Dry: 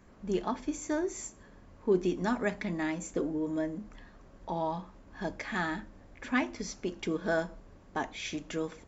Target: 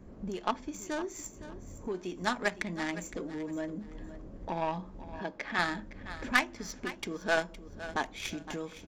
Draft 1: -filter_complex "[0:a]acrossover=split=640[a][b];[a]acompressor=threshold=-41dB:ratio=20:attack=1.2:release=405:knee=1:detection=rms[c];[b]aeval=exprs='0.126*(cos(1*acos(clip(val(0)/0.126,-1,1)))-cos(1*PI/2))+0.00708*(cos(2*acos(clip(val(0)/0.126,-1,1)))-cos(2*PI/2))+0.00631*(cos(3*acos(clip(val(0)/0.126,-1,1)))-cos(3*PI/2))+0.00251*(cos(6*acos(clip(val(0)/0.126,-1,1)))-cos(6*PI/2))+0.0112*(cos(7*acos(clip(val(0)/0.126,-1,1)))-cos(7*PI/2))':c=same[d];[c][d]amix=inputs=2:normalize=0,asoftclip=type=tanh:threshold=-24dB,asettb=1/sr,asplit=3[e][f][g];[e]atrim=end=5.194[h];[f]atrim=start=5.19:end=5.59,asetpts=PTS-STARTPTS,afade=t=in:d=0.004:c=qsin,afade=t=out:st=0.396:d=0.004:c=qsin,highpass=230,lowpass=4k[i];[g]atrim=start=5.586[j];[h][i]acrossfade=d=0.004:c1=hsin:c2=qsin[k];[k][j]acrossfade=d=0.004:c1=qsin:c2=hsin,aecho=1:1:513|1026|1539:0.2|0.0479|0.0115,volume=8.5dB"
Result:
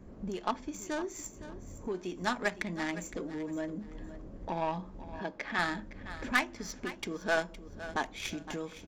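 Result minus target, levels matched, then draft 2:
soft clip: distortion +14 dB
-filter_complex "[0:a]acrossover=split=640[a][b];[a]acompressor=threshold=-41dB:ratio=20:attack=1.2:release=405:knee=1:detection=rms[c];[b]aeval=exprs='0.126*(cos(1*acos(clip(val(0)/0.126,-1,1)))-cos(1*PI/2))+0.00708*(cos(2*acos(clip(val(0)/0.126,-1,1)))-cos(2*PI/2))+0.00631*(cos(3*acos(clip(val(0)/0.126,-1,1)))-cos(3*PI/2))+0.00251*(cos(6*acos(clip(val(0)/0.126,-1,1)))-cos(6*PI/2))+0.0112*(cos(7*acos(clip(val(0)/0.126,-1,1)))-cos(7*PI/2))':c=same[d];[c][d]amix=inputs=2:normalize=0,asoftclip=type=tanh:threshold=-15.5dB,asettb=1/sr,asplit=3[e][f][g];[e]atrim=end=5.194[h];[f]atrim=start=5.19:end=5.59,asetpts=PTS-STARTPTS,afade=t=in:d=0.004:c=qsin,afade=t=out:st=0.396:d=0.004:c=qsin,highpass=230,lowpass=4k[i];[g]atrim=start=5.586[j];[h][i]acrossfade=d=0.004:c1=hsin:c2=qsin[k];[k][j]acrossfade=d=0.004:c1=qsin:c2=hsin,aecho=1:1:513|1026|1539:0.2|0.0479|0.0115,volume=8.5dB"

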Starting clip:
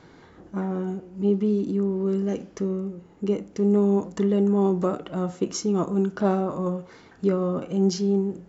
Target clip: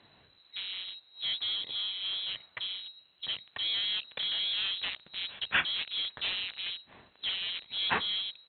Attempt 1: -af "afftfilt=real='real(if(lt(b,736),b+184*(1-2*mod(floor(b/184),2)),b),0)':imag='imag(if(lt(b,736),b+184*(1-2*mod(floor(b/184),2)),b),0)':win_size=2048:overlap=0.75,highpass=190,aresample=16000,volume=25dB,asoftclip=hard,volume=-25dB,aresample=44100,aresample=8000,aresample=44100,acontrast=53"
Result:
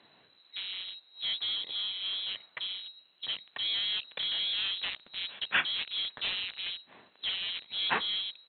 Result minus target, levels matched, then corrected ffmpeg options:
125 Hz band -3.5 dB
-af "afftfilt=real='real(if(lt(b,736),b+184*(1-2*mod(floor(b/184),2)),b),0)':imag='imag(if(lt(b,736),b+184*(1-2*mod(floor(b/184),2)),b),0)':win_size=2048:overlap=0.75,highpass=56,aresample=16000,volume=25dB,asoftclip=hard,volume=-25dB,aresample=44100,aresample=8000,aresample=44100,acontrast=53"

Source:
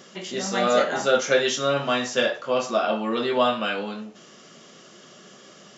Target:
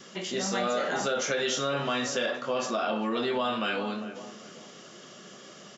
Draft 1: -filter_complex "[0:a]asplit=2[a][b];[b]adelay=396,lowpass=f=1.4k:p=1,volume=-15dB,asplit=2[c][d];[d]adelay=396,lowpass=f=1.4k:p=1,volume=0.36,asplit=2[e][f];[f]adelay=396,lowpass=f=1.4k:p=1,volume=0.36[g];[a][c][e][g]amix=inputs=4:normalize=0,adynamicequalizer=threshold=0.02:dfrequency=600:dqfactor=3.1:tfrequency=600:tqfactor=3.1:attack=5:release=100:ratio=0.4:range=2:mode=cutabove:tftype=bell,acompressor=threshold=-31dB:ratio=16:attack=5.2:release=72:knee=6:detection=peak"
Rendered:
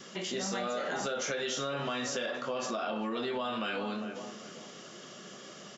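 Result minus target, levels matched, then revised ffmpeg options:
compressor: peak gain reduction +6 dB
-filter_complex "[0:a]asplit=2[a][b];[b]adelay=396,lowpass=f=1.4k:p=1,volume=-15dB,asplit=2[c][d];[d]adelay=396,lowpass=f=1.4k:p=1,volume=0.36,asplit=2[e][f];[f]adelay=396,lowpass=f=1.4k:p=1,volume=0.36[g];[a][c][e][g]amix=inputs=4:normalize=0,adynamicequalizer=threshold=0.02:dfrequency=600:dqfactor=3.1:tfrequency=600:tqfactor=3.1:attack=5:release=100:ratio=0.4:range=2:mode=cutabove:tftype=bell,acompressor=threshold=-24.5dB:ratio=16:attack=5.2:release=72:knee=6:detection=peak"

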